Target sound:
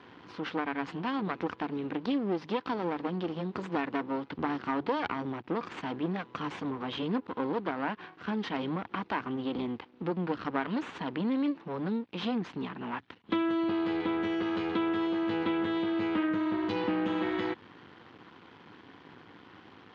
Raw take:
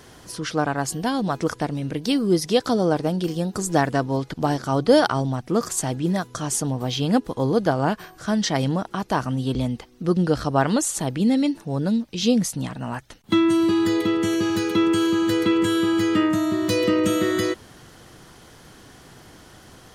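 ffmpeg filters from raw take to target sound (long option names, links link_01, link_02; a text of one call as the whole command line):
ffmpeg -i in.wav -af "aeval=exprs='max(val(0),0)':channel_layout=same,acompressor=threshold=-27dB:ratio=2.5,highpass=frequency=100:width=0.5412,highpass=frequency=100:width=1.3066,equalizer=frequency=130:width_type=q:width=4:gain=-9,equalizer=frequency=290:width_type=q:width=4:gain=4,equalizer=frequency=620:width_type=q:width=4:gain=-7,equalizer=frequency=1000:width_type=q:width=4:gain=4,lowpass=frequency=3300:width=0.5412,lowpass=frequency=3300:width=1.3066" out.wav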